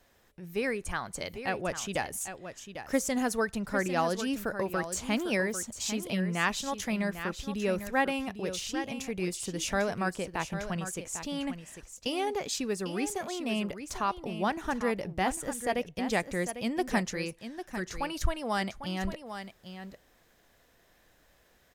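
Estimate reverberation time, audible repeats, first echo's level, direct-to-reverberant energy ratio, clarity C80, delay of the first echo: none, 1, -10.0 dB, none, none, 0.799 s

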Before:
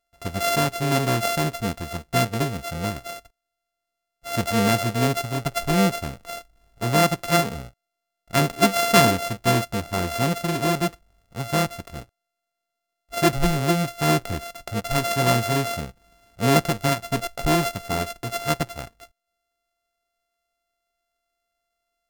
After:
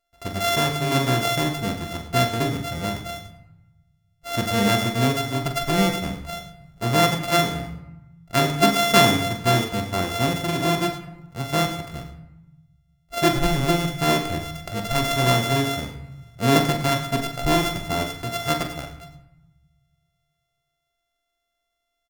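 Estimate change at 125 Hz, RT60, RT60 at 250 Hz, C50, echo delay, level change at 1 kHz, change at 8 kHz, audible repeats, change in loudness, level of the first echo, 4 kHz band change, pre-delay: +0.5 dB, 0.95 s, 1.3 s, 8.0 dB, 43 ms, +0.5 dB, -0.5 dB, 2, +1.0 dB, -8.5 dB, +3.5 dB, 3 ms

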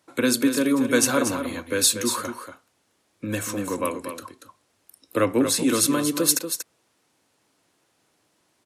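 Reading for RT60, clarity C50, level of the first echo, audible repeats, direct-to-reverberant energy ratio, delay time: none, none, -8.5 dB, 1, none, 0.236 s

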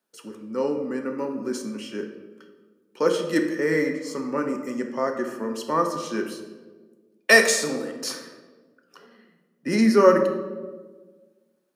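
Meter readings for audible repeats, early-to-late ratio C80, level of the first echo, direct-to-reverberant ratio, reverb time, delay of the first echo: none, 9.0 dB, none, 3.5 dB, 1.5 s, none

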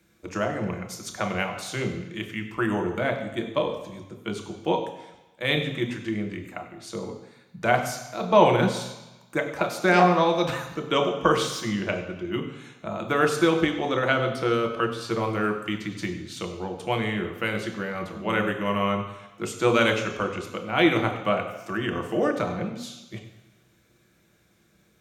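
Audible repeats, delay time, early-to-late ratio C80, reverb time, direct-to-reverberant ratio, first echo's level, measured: none, none, 9.5 dB, 1.0 s, 2.5 dB, none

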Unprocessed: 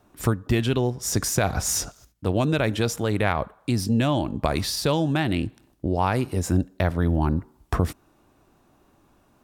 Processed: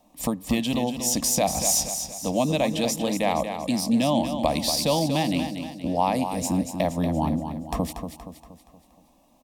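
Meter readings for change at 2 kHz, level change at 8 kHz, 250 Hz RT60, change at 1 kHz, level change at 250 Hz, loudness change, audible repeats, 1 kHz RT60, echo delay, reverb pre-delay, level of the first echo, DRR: -5.0 dB, +4.0 dB, none, +2.0 dB, +1.0 dB, 0.0 dB, 5, none, 0.236 s, none, -8.0 dB, none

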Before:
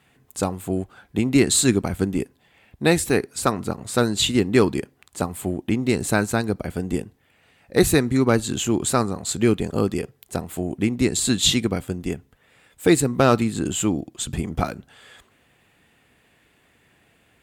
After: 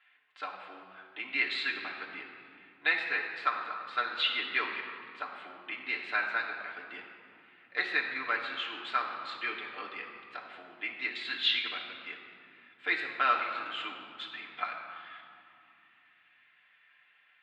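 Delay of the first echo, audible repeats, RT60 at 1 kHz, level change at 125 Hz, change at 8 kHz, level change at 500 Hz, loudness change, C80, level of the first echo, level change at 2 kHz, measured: none, none, 2.6 s, under -40 dB, under -40 dB, -23.5 dB, -11.0 dB, 5.5 dB, none, -0.5 dB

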